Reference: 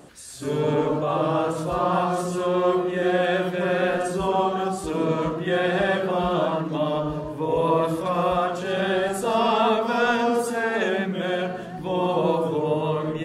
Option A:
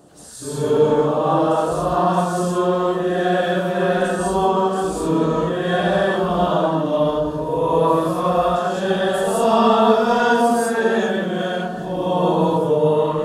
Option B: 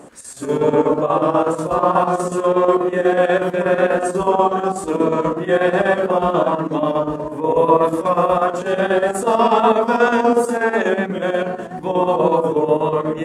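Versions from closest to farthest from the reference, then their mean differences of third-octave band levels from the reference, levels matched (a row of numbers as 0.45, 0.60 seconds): B, A; 3.5, 4.5 decibels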